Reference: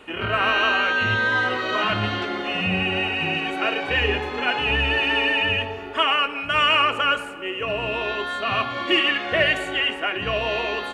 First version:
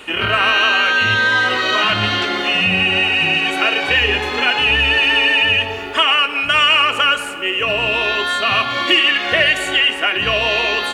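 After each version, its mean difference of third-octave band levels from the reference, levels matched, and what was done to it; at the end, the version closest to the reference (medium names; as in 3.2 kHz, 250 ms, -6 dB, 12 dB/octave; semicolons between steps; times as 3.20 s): 4.0 dB: treble shelf 2 kHz +11.5 dB; compression 2:1, threshold -19 dBFS, peak gain reduction 6 dB; trim +5 dB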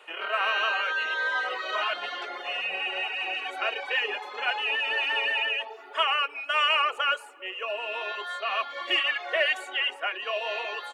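7.5 dB: high-pass 500 Hz 24 dB/octave; reverb removal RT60 0.77 s; trim -4 dB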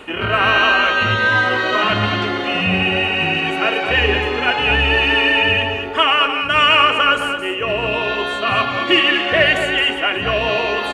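1.5 dB: reverse; upward compressor, threshold -24 dBFS; reverse; delay 218 ms -8.5 dB; trim +5.5 dB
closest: third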